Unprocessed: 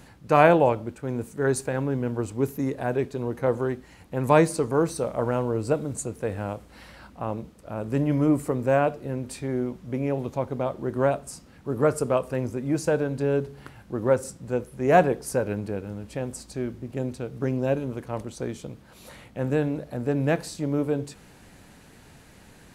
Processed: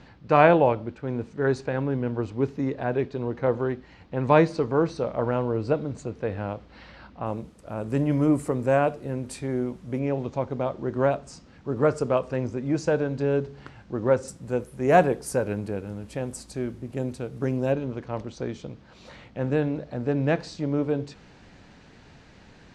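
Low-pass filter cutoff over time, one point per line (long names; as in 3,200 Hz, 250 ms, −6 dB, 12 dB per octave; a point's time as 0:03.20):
low-pass filter 24 dB per octave
4,900 Hz
from 0:07.26 11,000 Hz
from 0:09.99 6,500 Hz
from 0:14.28 12,000 Hz
from 0:17.72 5,800 Hz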